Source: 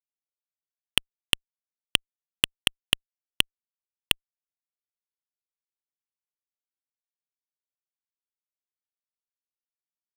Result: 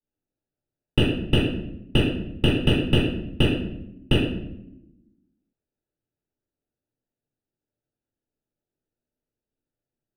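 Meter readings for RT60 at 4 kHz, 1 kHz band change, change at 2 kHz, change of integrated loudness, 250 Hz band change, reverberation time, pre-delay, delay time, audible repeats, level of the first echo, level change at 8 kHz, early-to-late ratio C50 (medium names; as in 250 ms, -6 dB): 0.55 s, +4.5 dB, 0.0 dB, +2.5 dB, +21.5 dB, 0.80 s, 3 ms, no echo, no echo, no echo, -14.0 dB, 0.5 dB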